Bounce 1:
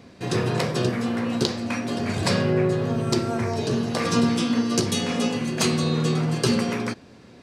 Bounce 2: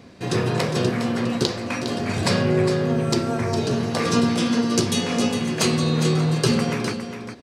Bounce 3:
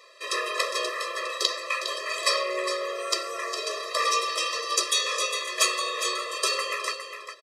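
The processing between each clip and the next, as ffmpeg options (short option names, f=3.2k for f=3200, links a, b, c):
-af "aecho=1:1:408:0.355,volume=1.5dB"
-af "aresample=32000,aresample=44100,highpass=f=670:w=0.5412,highpass=f=670:w=1.3066,afftfilt=real='re*eq(mod(floor(b*sr/1024/340),2),1)':imag='im*eq(mod(floor(b*sr/1024/340),2),1)':win_size=1024:overlap=0.75,volume=4.5dB"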